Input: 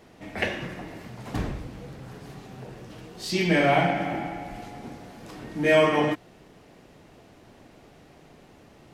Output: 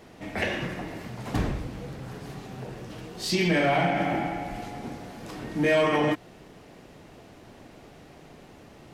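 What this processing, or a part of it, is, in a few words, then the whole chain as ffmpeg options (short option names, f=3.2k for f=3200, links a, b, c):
soft clipper into limiter: -af "asoftclip=type=tanh:threshold=-12.5dB,alimiter=limit=-18.5dB:level=0:latency=1:release=114,volume=3dB"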